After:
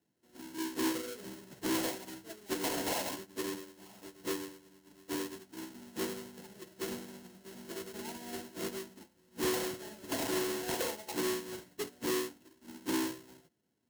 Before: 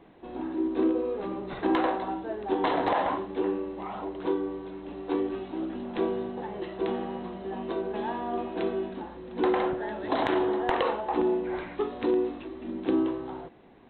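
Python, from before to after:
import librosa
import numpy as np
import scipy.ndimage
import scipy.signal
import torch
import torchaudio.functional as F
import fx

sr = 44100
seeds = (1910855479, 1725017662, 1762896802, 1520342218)

y = fx.halfwave_hold(x, sr)
y = scipy.signal.sosfilt(scipy.signal.butter(4, 72.0, 'highpass', fs=sr, output='sos'), y)
y = fx.bass_treble(y, sr, bass_db=8, treble_db=3)
y = fx.notch(y, sr, hz=780.0, q=12.0)
y = fx.notch_comb(y, sr, f0_hz=1200.0)
y = 10.0 ** (-19.5 / 20.0) * np.tanh(y / 10.0 ** (-19.5 / 20.0))
y = fx.high_shelf(y, sr, hz=3300.0, db=7.5)
y = fx.upward_expand(y, sr, threshold_db=-37.0, expansion=2.5)
y = F.gain(torch.from_numpy(y), -8.0).numpy()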